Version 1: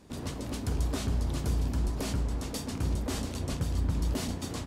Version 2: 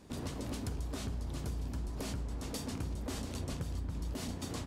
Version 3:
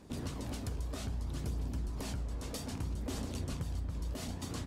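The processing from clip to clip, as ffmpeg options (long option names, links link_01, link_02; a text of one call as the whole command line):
ffmpeg -i in.wav -af "acompressor=threshold=-34dB:ratio=6,volume=-1dB" out.wav
ffmpeg -i in.wav -af "aphaser=in_gain=1:out_gain=1:delay=2:decay=0.25:speed=0.62:type=triangular,volume=-1dB" out.wav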